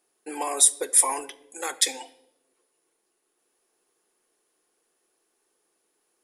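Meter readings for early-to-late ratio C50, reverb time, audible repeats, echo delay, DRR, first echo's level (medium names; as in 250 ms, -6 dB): 18.0 dB, 0.90 s, no echo, no echo, 11.5 dB, no echo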